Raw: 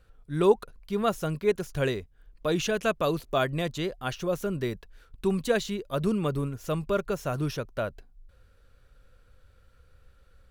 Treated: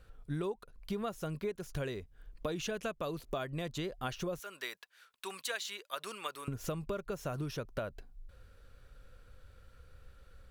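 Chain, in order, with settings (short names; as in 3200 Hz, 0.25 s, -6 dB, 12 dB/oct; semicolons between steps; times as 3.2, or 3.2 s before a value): 4.39–6.48 HPF 1200 Hz 12 dB/oct; compressor 16:1, threshold -35 dBFS, peak gain reduction 21 dB; gain +1.5 dB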